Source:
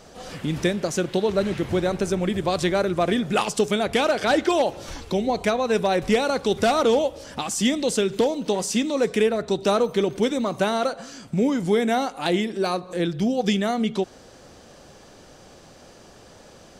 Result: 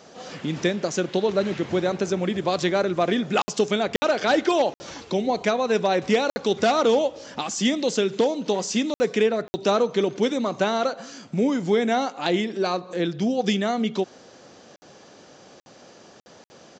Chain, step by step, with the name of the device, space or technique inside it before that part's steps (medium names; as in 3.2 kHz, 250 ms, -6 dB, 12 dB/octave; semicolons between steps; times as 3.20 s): call with lost packets (high-pass 160 Hz 12 dB/octave; resampled via 16 kHz; lost packets of 60 ms random)